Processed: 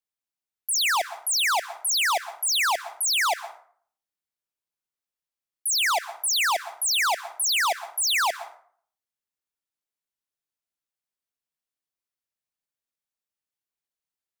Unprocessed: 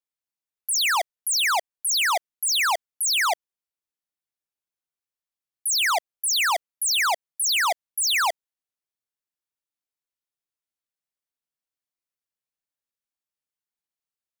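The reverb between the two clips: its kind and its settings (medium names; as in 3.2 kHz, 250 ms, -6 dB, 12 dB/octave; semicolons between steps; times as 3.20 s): plate-style reverb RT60 0.54 s, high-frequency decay 0.6×, pre-delay 110 ms, DRR 15 dB; trim -1 dB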